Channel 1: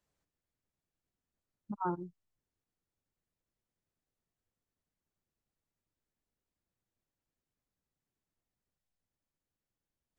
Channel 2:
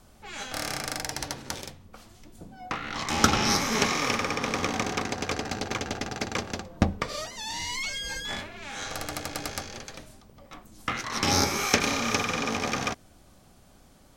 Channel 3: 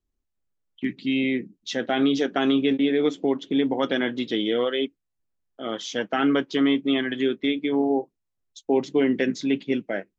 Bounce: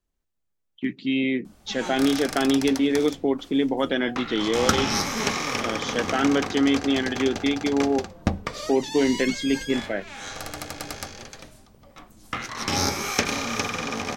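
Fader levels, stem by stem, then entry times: -4.0, -0.5, 0.0 dB; 0.00, 1.45, 0.00 s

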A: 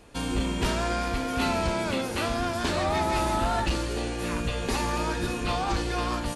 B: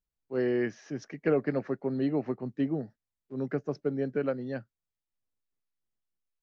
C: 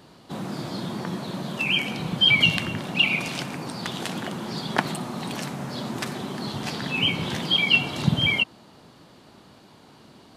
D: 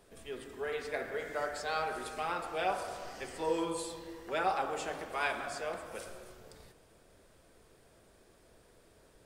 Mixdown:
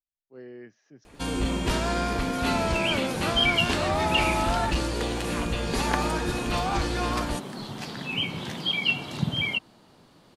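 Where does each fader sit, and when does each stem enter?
+0.5, -15.5, -5.5, -6.5 dB; 1.05, 0.00, 1.15, 1.50 s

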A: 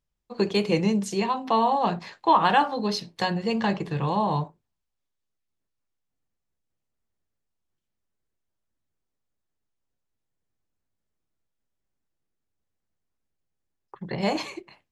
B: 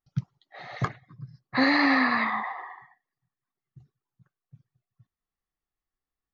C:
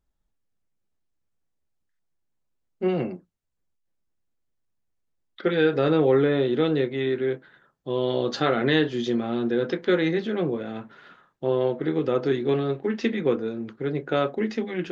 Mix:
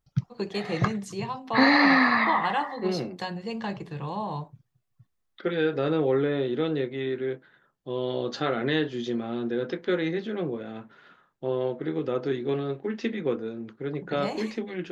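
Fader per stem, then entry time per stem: -7.5, +2.5, -4.5 dB; 0.00, 0.00, 0.00 s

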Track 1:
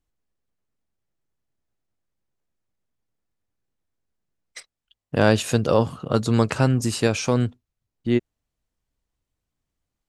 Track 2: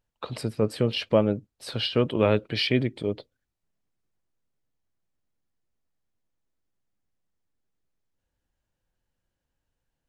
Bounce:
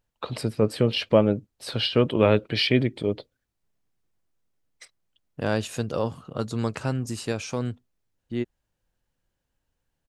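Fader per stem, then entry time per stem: -8.0, +2.5 dB; 0.25, 0.00 s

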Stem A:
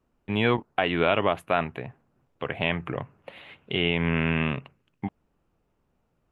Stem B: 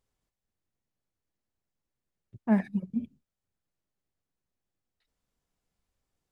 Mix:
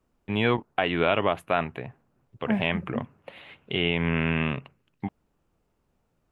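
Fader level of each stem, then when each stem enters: -0.5, -2.5 dB; 0.00, 0.00 s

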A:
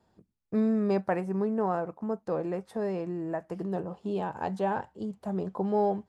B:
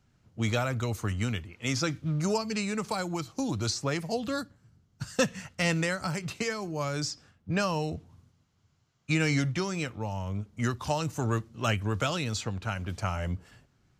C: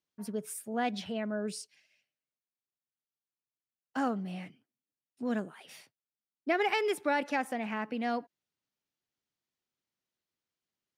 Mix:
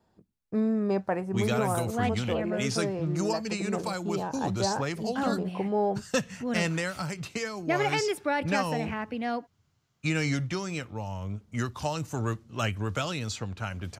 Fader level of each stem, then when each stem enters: -0.5, -1.5, +1.5 dB; 0.00, 0.95, 1.20 s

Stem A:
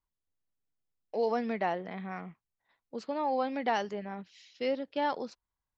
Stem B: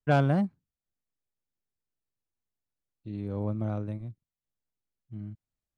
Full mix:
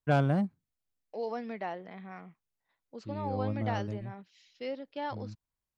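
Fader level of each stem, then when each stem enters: -6.0, -2.5 dB; 0.00, 0.00 s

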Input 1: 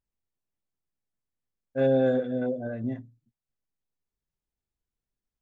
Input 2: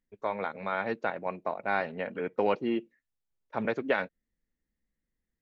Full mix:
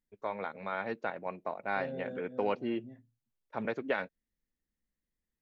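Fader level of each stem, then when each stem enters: -18.5, -4.5 dB; 0.00, 0.00 s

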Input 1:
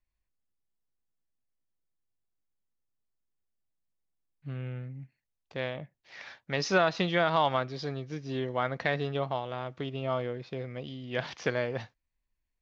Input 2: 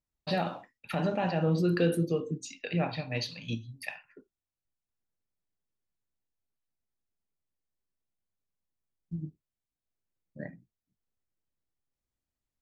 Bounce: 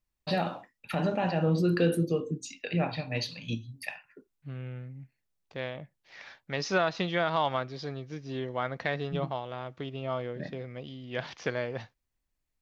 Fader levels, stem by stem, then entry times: -2.0, +1.0 dB; 0.00, 0.00 s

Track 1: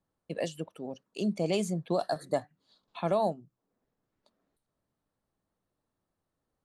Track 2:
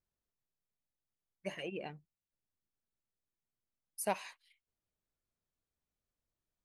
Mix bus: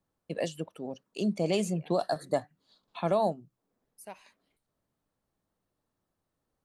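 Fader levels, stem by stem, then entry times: +1.0, -11.0 dB; 0.00, 0.00 s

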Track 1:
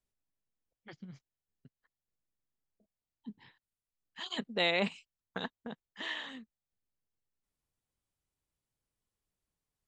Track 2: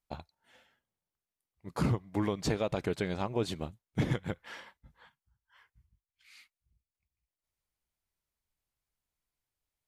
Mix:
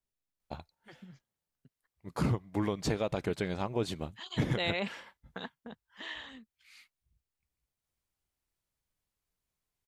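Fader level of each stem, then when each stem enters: -3.5, -0.5 dB; 0.00, 0.40 s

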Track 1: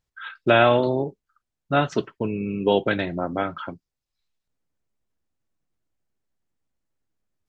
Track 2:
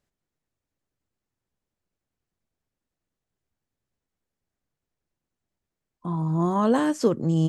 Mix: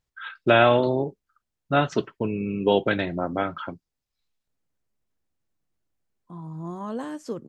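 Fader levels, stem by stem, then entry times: -0.5, -11.0 dB; 0.00, 0.25 s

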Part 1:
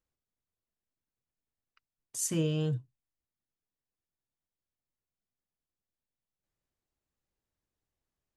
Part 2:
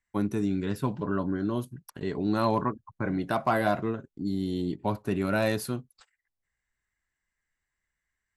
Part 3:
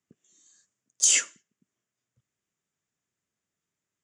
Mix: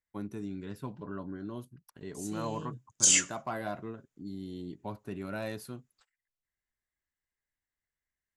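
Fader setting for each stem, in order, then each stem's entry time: -12.0, -11.0, -2.0 dB; 0.00, 0.00, 2.00 s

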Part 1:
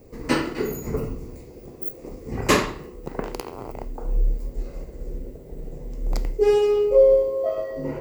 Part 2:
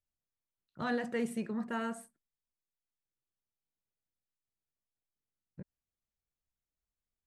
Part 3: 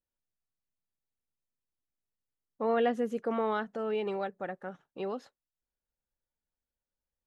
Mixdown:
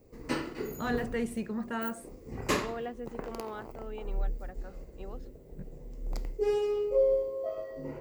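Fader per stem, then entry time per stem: -10.5, +1.5, -10.5 dB; 0.00, 0.00, 0.00 s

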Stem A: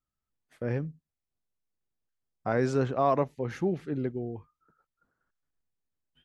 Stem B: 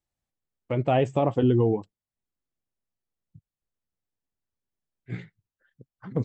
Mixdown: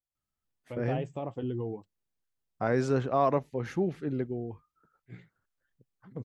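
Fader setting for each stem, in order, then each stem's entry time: -0.5, -13.0 dB; 0.15, 0.00 s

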